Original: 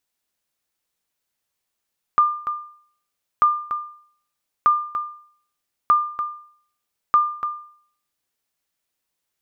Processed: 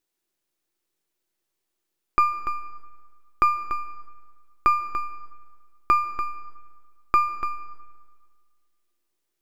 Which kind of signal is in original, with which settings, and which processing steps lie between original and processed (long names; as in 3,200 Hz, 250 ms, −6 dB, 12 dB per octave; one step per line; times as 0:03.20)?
ping with an echo 1,200 Hz, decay 0.56 s, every 1.24 s, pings 5, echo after 0.29 s, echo −10.5 dB −8.5 dBFS
gain on one half-wave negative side −7 dB
parametric band 350 Hz +14 dB 0.42 octaves
comb and all-pass reverb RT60 1.7 s, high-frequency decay 0.8×, pre-delay 100 ms, DRR 17 dB